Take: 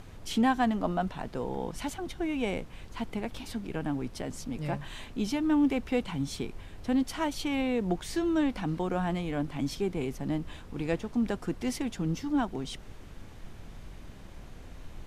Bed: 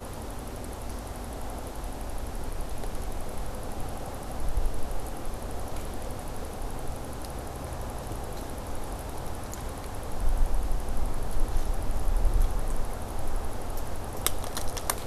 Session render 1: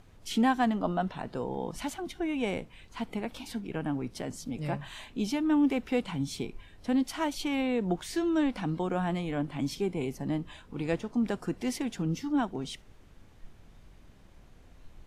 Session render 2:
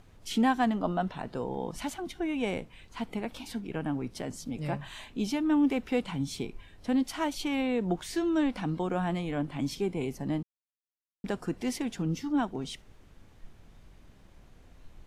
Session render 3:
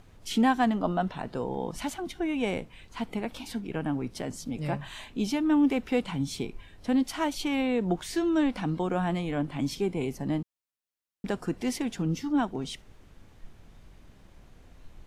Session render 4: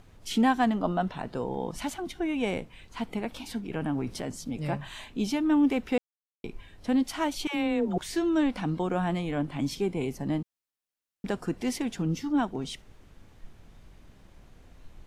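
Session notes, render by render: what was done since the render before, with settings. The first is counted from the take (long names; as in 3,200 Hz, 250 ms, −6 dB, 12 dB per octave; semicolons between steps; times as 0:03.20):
noise reduction from a noise print 9 dB
0:10.43–0:11.24: silence
level +2 dB
0:03.63–0:04.29: transient designer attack −1 dB, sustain +6 dB; 0:05.98–0:06.44: silence; 0:07.47–0:07.98: all-pass dispersion lows, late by 92 ms, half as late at 480 Hz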